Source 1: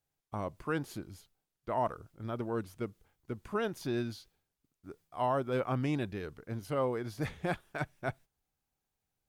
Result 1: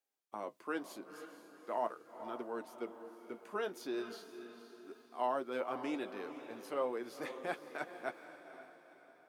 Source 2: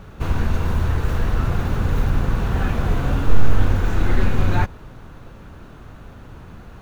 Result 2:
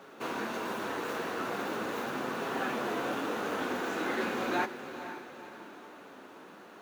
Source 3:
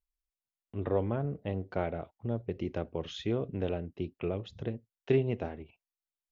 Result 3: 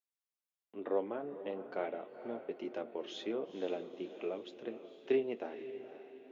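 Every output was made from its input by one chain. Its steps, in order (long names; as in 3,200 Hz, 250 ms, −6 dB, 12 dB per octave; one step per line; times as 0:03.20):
high-pass filter 270 Hz 24 dB per octave
on a send: feedback delay with all-pass diffusion 485 ms, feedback 45%, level −11 dB
on the sum: flanger 0.4 Hz, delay 7.2 ms, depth 4.1 ms, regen −52%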